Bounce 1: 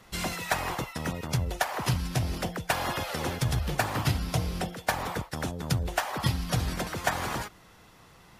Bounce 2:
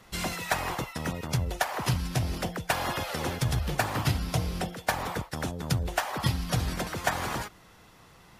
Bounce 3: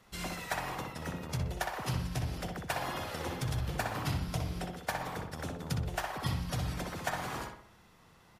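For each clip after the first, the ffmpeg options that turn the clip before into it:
-af anull
-filter_complex "[0:a]asplit=2[a][b];[b]adelay=62,lowpass=f=2.8k:p=1,volume=-3dB,asplit=2[c][d];[d]adelay=62,lowpass=f=2.8k:p=1,volume=0.48,asplit=2[e][f];[f]adelay=62,lowpass=f=2.8k:p=1,volume=0.48,asplit=2[g][h];[h]adelay=62,lowpass=f=2.8k:p=1,volume=0.48,asplit=2[i][j];[j]adelay=62,lowpass=f=2.8k:p=1,volume=0.48,asplit=2[k][l];[l]adelay=62,lowpass=f=2.8k:p=1,volume=0.48[m];[a][c][e][g][i][k][m]amix=inputs=7:normalize=0,volume=-8dB"

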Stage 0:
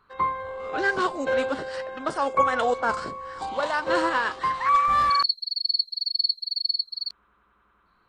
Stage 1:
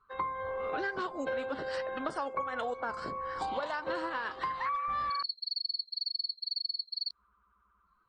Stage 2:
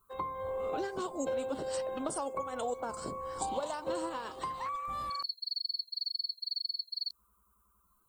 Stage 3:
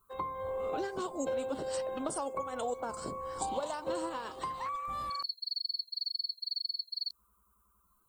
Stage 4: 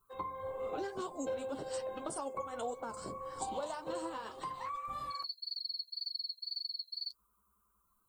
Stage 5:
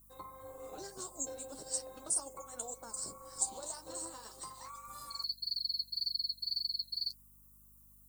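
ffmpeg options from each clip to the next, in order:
-af "acompressor=threshold=-31dB:ratio=12,afftdn=nr=16:nf=-56"
-af "equalizer=f=1.7k:w=1.4:g=-14.5,aexciter=amount=8.6:drive=5.2:freq=6.9k,volume=2dB"
-af anull
-af "flanger=delay=6.3:depth=4.4:regen=-37:speed=1.8:shape=triangular"
-af "tremolo=f=240:d=0.519,aeval=exprs='val(0)+0.00126*(sin(2*PI*50*n/s)+sin(2*PI*2*50*n/s)/2+sin(2*PI*3*50*n/s)/3+sin(2*PI*4*50*n/s)/4+sin(2*PI*5*50*n/s)/5)':c=same,aexciter=amount=7.5:drive=8.1:freq=4.6k,volume=-6.5dB"

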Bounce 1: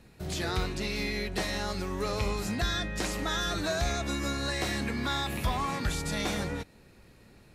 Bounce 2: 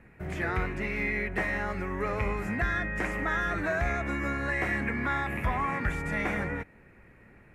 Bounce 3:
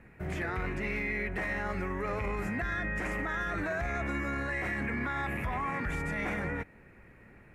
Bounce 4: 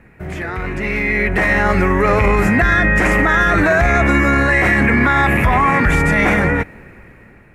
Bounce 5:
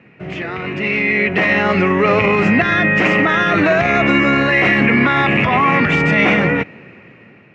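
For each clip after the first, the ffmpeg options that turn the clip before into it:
-af "highshelf=f=2.9k:t=q:w=3:g=-12.5"
-af "alimiter=level_in=1.5dB:limit=-24dB:level=0:latency=1:release=13,volume=-1.5dB"
-af "dynaudnorm=f=320:g=7:m=11.5dB,volume=8.5dB"
-af "highpass=f=120:w=0.5412,highpass=f=120:w=1.3066,equalizer=f=880:t=q:w=4:g=-4,equalizer=f=1.6k:t=q:w=4:g=-6,equalizer=f=2.8k:t=q:w=4:g=9,lowpass=f=5.3k:w=0.5412,lowpass=f=5.3k:w=1.3066,volume=1.5dB"

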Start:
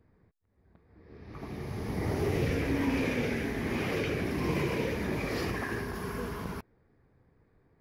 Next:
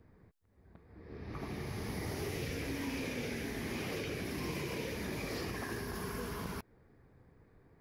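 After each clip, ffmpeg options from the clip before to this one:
-filter_complex "[0:a]acrossover=split=1300|3400[a][b][c];[a]acompressor=threshold=-42dB:ratio=4[d];[b]acompressor=threshold=-54dB:ratio=4[e];[c]acompressor=threshold=-50dB:ratio=4[f];[d][e][f]amix=inputs=3:normalize=0,volume=3dB"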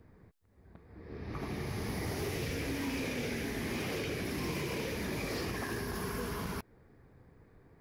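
-af "aeval=exprs='0.0251*(abs(mod(val(0)/0.0251+3,4)-2)-1)':c=same,volume=3dB"

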